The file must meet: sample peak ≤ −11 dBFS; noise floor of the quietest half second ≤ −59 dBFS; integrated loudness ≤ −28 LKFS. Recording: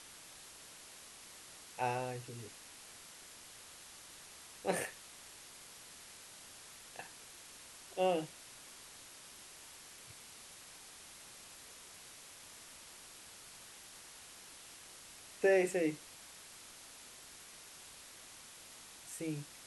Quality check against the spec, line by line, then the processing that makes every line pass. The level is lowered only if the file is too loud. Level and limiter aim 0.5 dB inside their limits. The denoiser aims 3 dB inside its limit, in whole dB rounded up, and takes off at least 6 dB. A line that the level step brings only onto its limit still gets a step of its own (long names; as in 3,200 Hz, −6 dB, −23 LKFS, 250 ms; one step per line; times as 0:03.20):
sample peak −18.5 dBFS: in spec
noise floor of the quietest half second −55 dBFS: out of spec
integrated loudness −43.5 LKFS: in spec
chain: broadband denoise 7 dB, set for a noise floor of −55 dBFS